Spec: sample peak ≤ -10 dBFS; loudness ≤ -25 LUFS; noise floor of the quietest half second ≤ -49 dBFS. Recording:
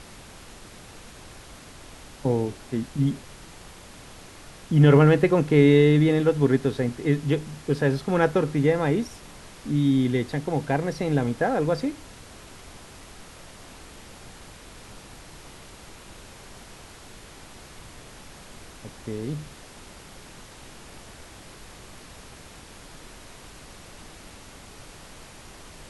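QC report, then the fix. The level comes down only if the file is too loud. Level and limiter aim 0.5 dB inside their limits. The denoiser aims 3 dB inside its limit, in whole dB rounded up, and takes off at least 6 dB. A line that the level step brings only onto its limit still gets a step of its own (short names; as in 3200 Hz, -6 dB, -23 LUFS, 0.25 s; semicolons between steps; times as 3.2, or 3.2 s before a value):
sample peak -5.5 dBFS: fail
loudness -22.5 LUFS: fail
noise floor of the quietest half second -45 dBFS: fail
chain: denoiser 6 dB, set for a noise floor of -45 dBFS; gain -3 dB; limiter -10.5 dBFS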